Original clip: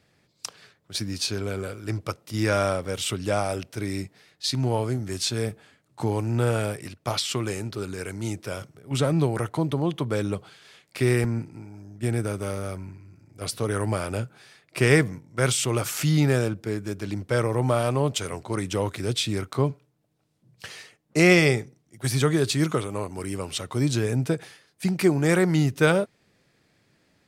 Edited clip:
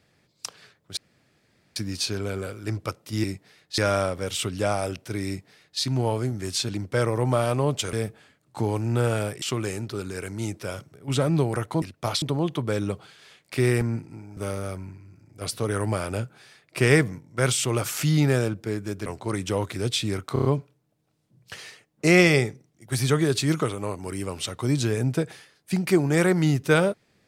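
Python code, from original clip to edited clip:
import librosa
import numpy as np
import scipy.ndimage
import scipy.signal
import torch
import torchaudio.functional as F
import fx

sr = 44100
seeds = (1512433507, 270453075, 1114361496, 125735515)

y = fx.edit(x, sr, fx.insert_room_tone(at_s=0.97, length_s=0.79),
    fx.duplicate(start_s=3.94, length_s=0.54, to_s=2.45),
    fx.move(start_s=6.85, length_s=0.4, to_s=9.65),
    fx.cut(start_s=11.8, length_s=0.57),
    fx.move(start_s=17.06, length_s=1.24, to_s=5.36),
    fx.stutter(start_s=19.57, slice_s=0.03, count=5), tone=tone)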